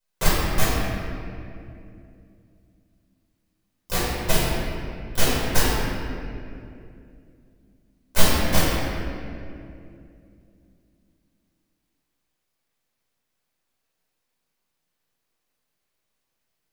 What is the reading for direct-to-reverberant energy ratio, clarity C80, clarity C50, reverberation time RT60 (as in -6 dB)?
-11.0 dB, -1.0 dB, -3.0 dB, 2.6 s